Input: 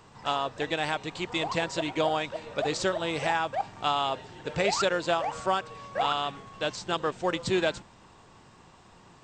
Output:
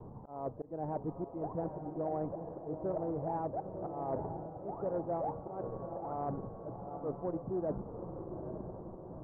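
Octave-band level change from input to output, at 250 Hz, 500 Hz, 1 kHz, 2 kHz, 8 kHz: -4.5 dB, -7.5 dB, -11.5 dB, under -30 dB, under -40 dB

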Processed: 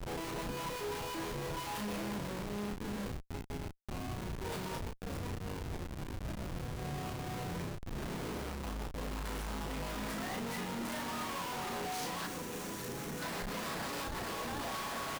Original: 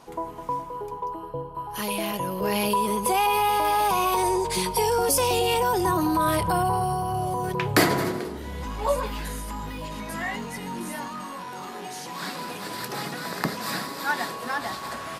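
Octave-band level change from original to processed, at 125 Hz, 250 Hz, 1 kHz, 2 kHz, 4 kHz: -8.0 dB, -10.5 dB, -17.0 dB, -12.0 dB, -11.5 dB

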